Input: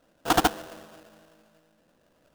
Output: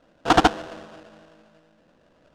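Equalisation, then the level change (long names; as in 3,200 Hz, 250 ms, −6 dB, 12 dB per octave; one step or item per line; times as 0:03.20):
high-frequency loss of the air 100 metres
+6.0 dB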